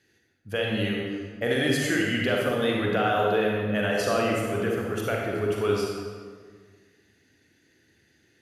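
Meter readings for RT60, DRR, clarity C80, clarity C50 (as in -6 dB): 1.7 s, -2.0 dB, 1.5 dB, -0.5 dB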